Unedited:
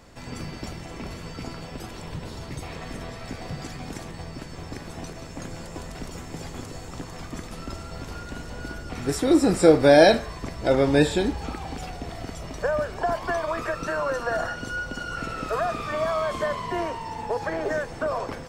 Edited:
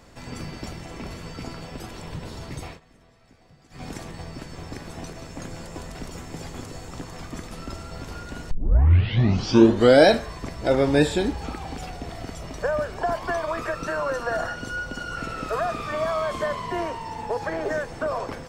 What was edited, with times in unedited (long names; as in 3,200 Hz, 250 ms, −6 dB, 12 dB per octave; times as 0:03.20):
0:02.67–0:03.83: duck −20.5 dB, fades 0.13 s
0:08.51: tape start 1.57 s